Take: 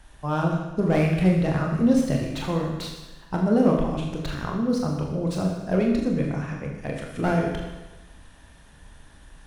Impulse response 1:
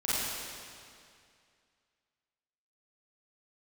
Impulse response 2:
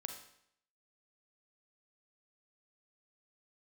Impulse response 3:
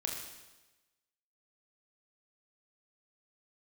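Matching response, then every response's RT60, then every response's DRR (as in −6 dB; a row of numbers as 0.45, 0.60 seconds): 3; 2.3, 0.70, 1.1 seconds; −11.5, 4.5, −0.5 decibels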